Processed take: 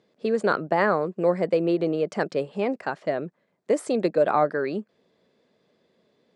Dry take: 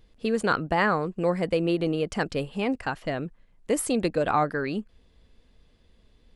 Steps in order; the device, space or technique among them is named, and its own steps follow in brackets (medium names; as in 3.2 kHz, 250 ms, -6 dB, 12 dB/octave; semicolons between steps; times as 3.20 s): television speaker (cabinet simulation 160–8400 Hz, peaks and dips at 260 Hz -3 dB, 390 Hz +5 dB, 600 Hz +7 dB, 2.9 kHz -6 dB); treble shelf 4.8 kHz -6 dB